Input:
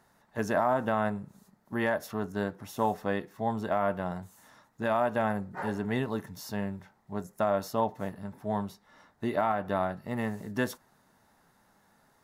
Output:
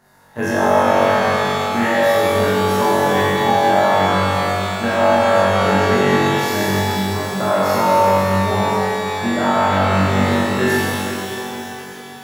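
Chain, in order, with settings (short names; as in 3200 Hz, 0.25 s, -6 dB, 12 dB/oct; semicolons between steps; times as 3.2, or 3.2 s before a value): flutter echo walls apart 3.6 m, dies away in 1.4 s; in parallel at -2 dB: negative-ratio compressor -26 dBFS; on the sum: shimmer reverb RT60 3.4 s, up +12 st, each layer -8 dB, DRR -4.5 dB; gain -1 dB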